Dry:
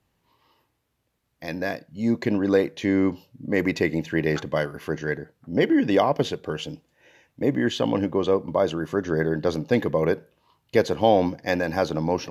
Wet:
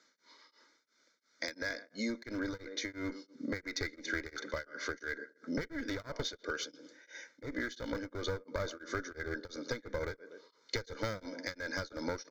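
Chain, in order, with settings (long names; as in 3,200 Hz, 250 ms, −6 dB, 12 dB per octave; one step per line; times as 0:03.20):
elliptic band-pass filter 310–6,500 Hz, stop band 40 dB
on a send: tape delay 118 ms, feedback 29%, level −14.5 dB, low-pass 1,200 Hz
on the sum: asymmetric clip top −23.5 dBFS, bottom −11.5 dBFS
high-shelf EQ 4,500 Hz +8 dB
phaser with its sweep stopped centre 2,800 Hz, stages 6
comb filter 1.4 ms, depth 63%
downward compressor 10 to 1, threshold −43 dBFS, peak gain reduction 20.5 dB
tremolo along a rectified sine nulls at 2.9 Hz
level +10.5 dB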